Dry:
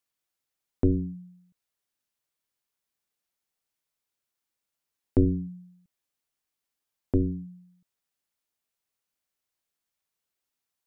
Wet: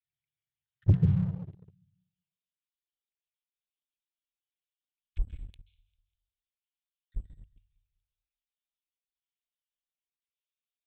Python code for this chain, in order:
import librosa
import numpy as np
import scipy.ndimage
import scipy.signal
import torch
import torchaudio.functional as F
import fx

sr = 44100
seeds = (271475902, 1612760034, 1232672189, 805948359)

y = fx.spec_dropout(x, sr, seeds[0], share_pct=43)
y = fx.lpc_vocoder(y, sr, seeds[1], excitation='pitch_kept', order=10)
y = fx.cheby2_bandstop(y, sr, low_hz=fx.steps((0.0, 360.0), (1.3, 150.0)), high_hz=730.0, order=4, stop_db=70)
y = fx.dynamic_eq(y, sr, hz=180.0, q=1.1, threshold_db=-50.0, ratio=4.0, max_db=5)
y = scipy.signal.sosfilt(scipy.signal.butter(2, 43.0, 'highpass', fs=sr, output='sos'), y)
y = fx.peak_eq(y, sr, hz=140.0, db=14.5, octaves=0.97)
y = fx.hum_notches(y, sr, base_hz=60, count=3)
y = fx.echo_feedback(y, sr, ms=198, feedback_pct=43, wet_db=-15.5)
y = fx.rev_plate(y, sr, seeds[2], rt60_s=0.6, hf_ratio=0.95, predelay_ms=120, drr_db=5.0)
y = fx.leveller(y, sr, passes=2)